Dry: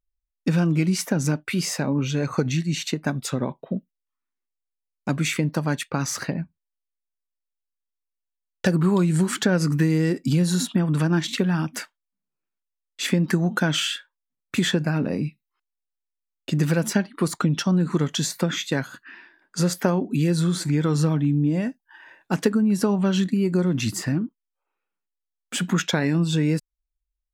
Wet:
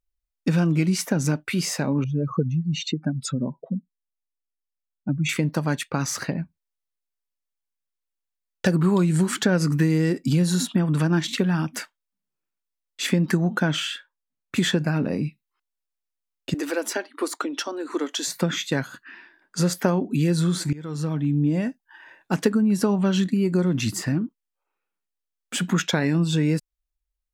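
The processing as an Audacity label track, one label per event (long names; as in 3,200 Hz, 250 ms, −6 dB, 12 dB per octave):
2.040000	5.290000	expanding power law on the bin magnitudes exponent 2.2
13.370000	14.560000	high-shelf EQ 3,500 Hz −7 dB
16.540000	18.280000	elliptic high-pass filter 280 Hz
20.730000	21.420000	fade in linear, from −21 dB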